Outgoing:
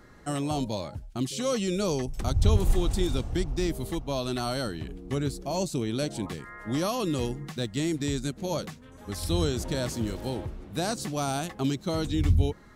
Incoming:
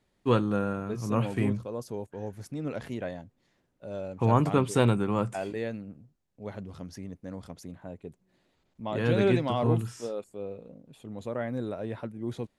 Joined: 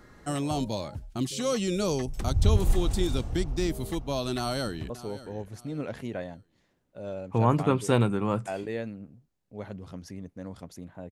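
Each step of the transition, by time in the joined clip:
outgoing
4.36–4.9 echo throw 0.58 s, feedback 30%, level -16 dB
4.9 switch to incoming from 1.77 s

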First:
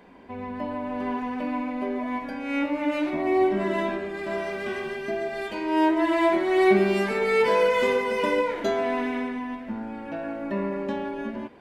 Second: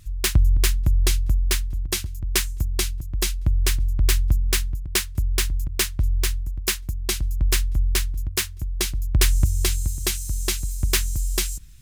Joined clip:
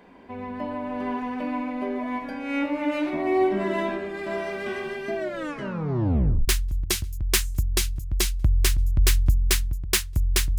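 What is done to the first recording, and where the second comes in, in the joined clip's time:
first
5.16 tape stop 1.32 s
6.48 switch to second from 1.5 s

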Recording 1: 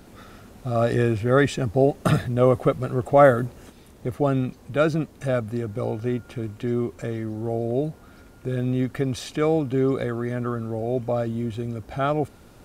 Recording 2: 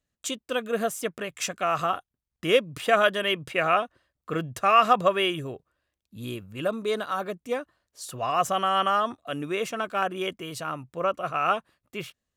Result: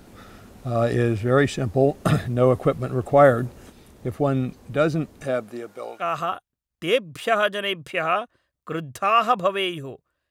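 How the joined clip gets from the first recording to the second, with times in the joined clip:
recording 1
5.23–6.04 HPF 190 Hz -> 1000 Hz
6 switch to recording 2 from 1.61 s, crossfade 0.08 s

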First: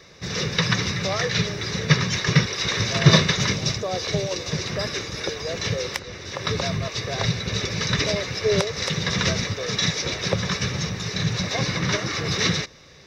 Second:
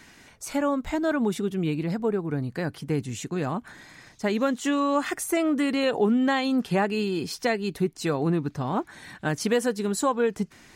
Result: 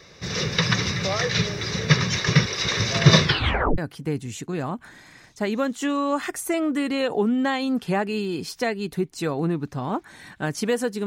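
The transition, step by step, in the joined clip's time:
first
3.23 tape stop 0.55 s
3.78 switch to second from 2.61 s

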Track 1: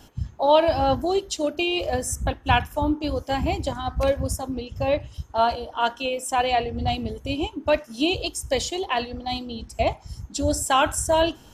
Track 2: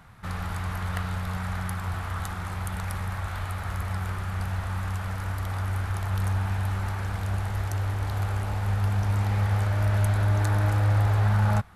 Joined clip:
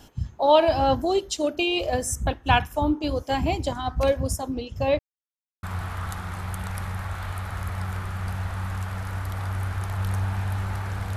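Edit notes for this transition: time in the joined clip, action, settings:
track 1
4.99–5.63 mute
5.63 switch to track 2 from 1.76 s

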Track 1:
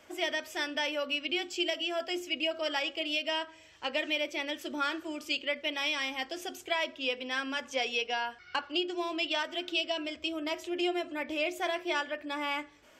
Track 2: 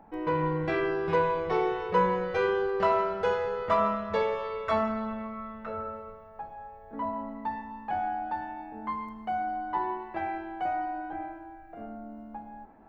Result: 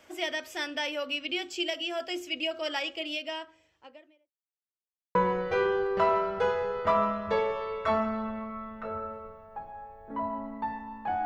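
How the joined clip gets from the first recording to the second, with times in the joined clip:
track 1
2.84–4.33 studio fade out
4.33–5.15 mute
5.15 switch to track 2 from 1.98 s

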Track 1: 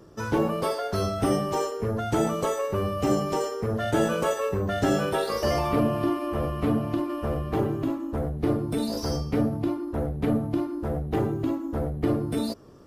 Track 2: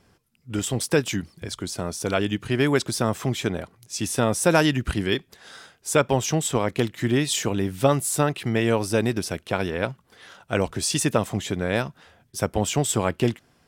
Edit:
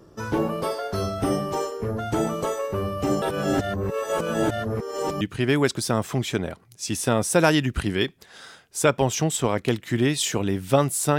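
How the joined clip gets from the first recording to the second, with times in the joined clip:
track 1
3.22–5.21 reverse
5.21 switch to track 2 from 2.32 s

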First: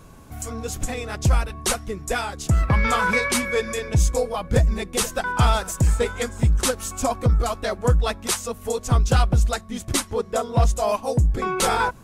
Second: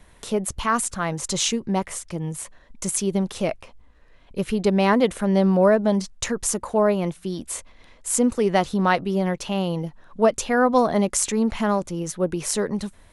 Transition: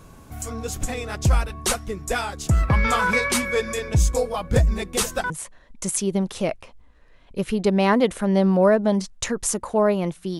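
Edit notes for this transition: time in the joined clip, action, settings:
first
5.3 switch to second from 2.3 s

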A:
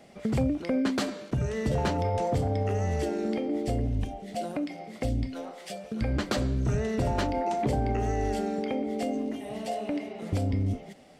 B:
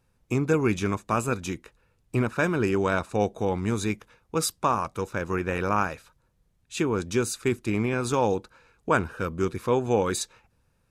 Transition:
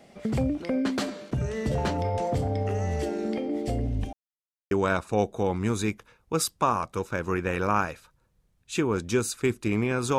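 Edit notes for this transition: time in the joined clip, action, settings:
A
4.13–4.71 mute
4.71 switch to B from 2.73 s

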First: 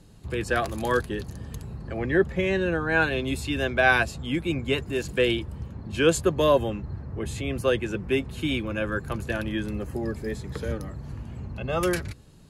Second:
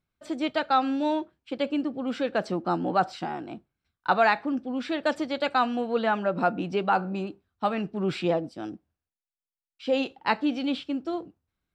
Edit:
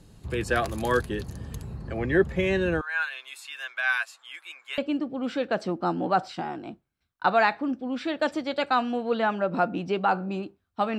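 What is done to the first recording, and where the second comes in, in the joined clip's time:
first
2.81–4.78 ladder high-pass 1000 Hz, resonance 30%
4.78 switch to second from 1.62 s

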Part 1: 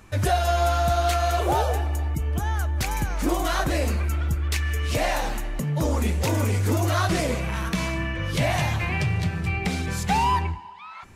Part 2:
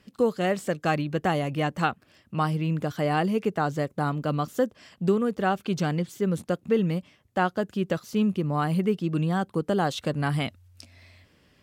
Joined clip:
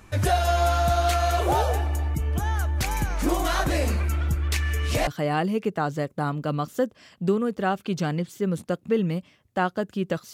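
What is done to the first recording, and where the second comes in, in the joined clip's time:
part 1
5.07 switch to part 2 from 2.87 s

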